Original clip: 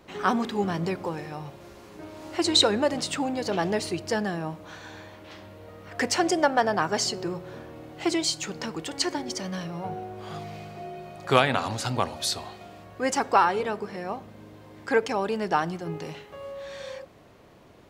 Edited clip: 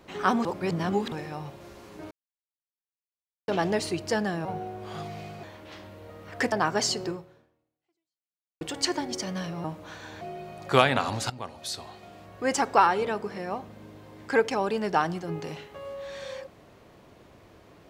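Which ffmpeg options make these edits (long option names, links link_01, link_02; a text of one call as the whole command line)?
ffmpeg -i in.wav -filter_complex "[0:a]asplit=12[link_01][link_02][link_03][link_04][link_05][link_06][link_07][link_08][link_09][link_10][link_11][link_12];[link_01]atrim=end=0.452[link_13];[link_02]atrim=start=0.448:end=1.122,asetpts=PTS-STARTPTS,areverse[link_14];[link_03]atrim=start=1.118:end=2.11,asetpts=PTS-STARTPTS,afade=type=out:start_time=0.988:duration=0.004:curve=hsin[link_15];[link_04]atrim=start=2.11:end=3.48,asetpts=PTS-STARTPTS,volume=0[link_16];[link_05]atrim=start=3.48:end=4.452,asetpts=PTS-STARTPTS,afade=type=in:duration=0.004:curve=hsin[link_17];[link_06]atrim=start=9.808:end=10.792[link_18];[link_07]atrim=start=5.018:end=6.112[link_19];[link_08]atrim=start=6.688:end=8.78,asetpts=PTS-STARTPTS,afade=type=out:start_time=0.562:duration=1.53:curve=exp[link_20];[link_09]atrim=start=8.78:end=9.812,asetpts=PTS-STARTPTS,afade=type=in:duration=0.004:curve=hsin[link_21];[link_10]atrim=start=4.448:end=5.022[link_22];[link_11]atrim=start=10.788:end=11.88,asetpts=PTS-STARTPTS,afade=type=out:start_time=1.088:duration=0.004:curve=hsin:silence=0.177828[link_23];[link_12]atrim=start=11.88,asetpts=PTS-STARTPTS,afade=type=in:duration=1.18:silence=0.177828[link_24];[link_13][link_14]acrossfade=duration=0.004:curve1=hsin:curve2=hsin[link_25];[link_15][link_16][link_17]concat=n=3:v=0:a=1[link_26];[link_25][link_26]acrossfade=duration=0.004:curve1=hsin:curve2=hsin[link_27];[link_27][link_18]acrossfade=duration=0.004:curve1=hsin:curve2=hsin[link_28];[link_28][link_19]acrossfade=duration=0.004:curve1=hsin:curve2=hsin[link_29];[link_20][link_21]concat=n=2:v=0:a=1[link_30];[link_29][link_30]acrossfade=duration=0.004:curve1=hsin:curve2=hsin[link_31];[link_31][link_22]acrossfade=duration=0.004:curve1=hsin:curve2=hsin[link_32];[link_23][link_24]concat=n=2:v=0:a=1[link_33];[link_32][link_33]acrossfade=duration=0.004:curve1=hsin:curve2=hsin" out.wav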